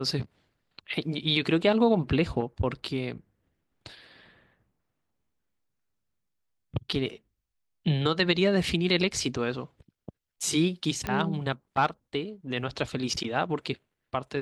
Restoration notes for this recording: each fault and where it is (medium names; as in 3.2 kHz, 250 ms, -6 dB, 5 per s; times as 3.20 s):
11.07 s: pop -15 dBFS